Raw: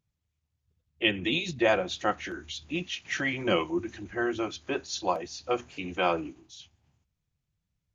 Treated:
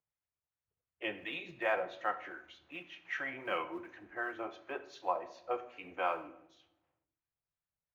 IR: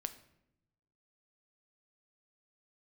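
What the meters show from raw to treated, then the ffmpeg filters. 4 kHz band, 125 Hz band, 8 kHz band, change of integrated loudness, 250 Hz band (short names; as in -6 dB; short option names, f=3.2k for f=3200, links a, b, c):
-16.0 dB, -21.0 dB, n/a, -9.0 dB, -15.5 dB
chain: -filter_complex "[0:a]acrusher=bits=6:mode=log:mix=0:aa=0.000001,acrossover=split=1000[a][b];[a]aeval=exprs='val(0)*(1-0.5/2+0.5/2*cos(2*PI*2.7*n/s))':c=same[c];[b]aeval=exprs='val(0)*(1-0.5/2-0.5/2*cos(2*PI*2.7*n/s))':c=same[d];[c][d]amix=inputs=2:normalize=0,acrossover=split=470 2300:gain=0.126 1 0.0708[e][f][g];[e][f][g]amix=inputs=3:normalize=0[h];[1:a]atrim=start_sample=2205[i];[h][i]afir=irnorm=-1:irlink=0"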